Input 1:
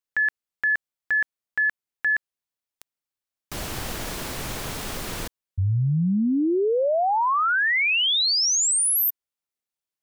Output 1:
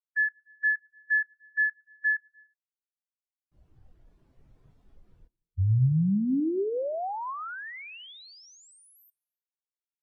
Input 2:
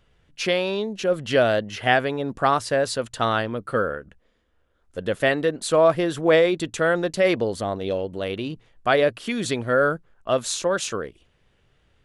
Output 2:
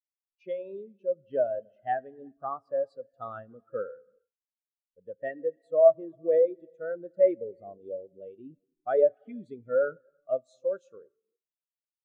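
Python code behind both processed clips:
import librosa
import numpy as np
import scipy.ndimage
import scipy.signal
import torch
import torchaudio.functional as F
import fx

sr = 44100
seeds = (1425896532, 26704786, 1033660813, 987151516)

y = fx.rider(x, sr, range_db=4, speed_s=2.0)
y = fx.rev_gated(y, sr, seeds[0], gate_ms=420, shape='flat', drr_db=10.0)
y = fx.spectral_expand(y, sr, expansion=2.5)
y = y * 10.0 ** (-3.5 / 20.0)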